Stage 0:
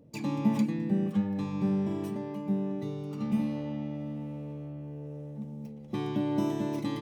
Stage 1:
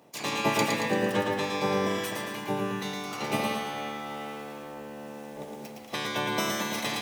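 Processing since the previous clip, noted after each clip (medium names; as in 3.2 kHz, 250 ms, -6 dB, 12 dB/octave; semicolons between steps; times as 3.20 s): spectral peaks clipped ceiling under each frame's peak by 29 dB; high-pass 130 Hz 24 dB/octave; bit-crushed delay 113 ms, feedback 55%, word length 9-bit, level -3.5 dB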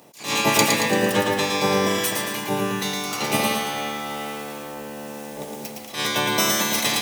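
treble shelf 4.2 kHz +10.5 dB; attacks held to a fixed rise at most 160 dB/s; trim +6 dB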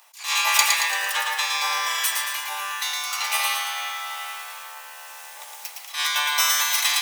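inverse Chebyshev high-pass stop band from 280 Hz, stop band 60 dB; trim +1.5 dB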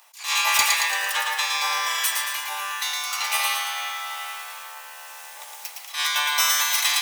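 hard clipper -11.5 dBFS, distortion -22 dB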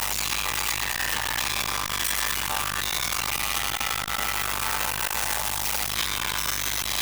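one-bit comparator; hum 50 Hz, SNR 14 dB; transformer saturation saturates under 540 Hz; trim +3.5 dB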